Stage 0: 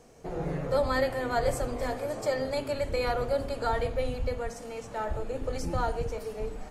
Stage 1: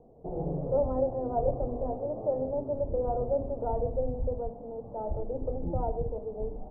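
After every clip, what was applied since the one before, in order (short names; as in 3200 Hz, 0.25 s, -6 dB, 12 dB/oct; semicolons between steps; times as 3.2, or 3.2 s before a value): steep low-pass 830 Hz 36 dB/oct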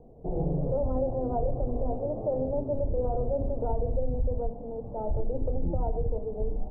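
tilt -2 dB/oct; limiter -19.5 dBFS, peak gain reduction 8.5 dB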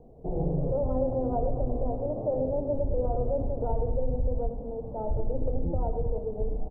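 feedback echo 0.112 s, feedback 56%, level -11 dB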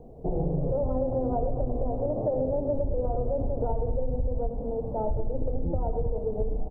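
compressor, threshold -28 dBFS, peak gain reduction 7 dB; gain +5 dB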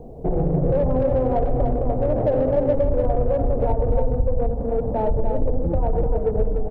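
in parallel at -7 dB: soft clip -31.5 dBFS, distortion -8 dB; on the sum: echo 0.296 s -6 dB; gain +5 dB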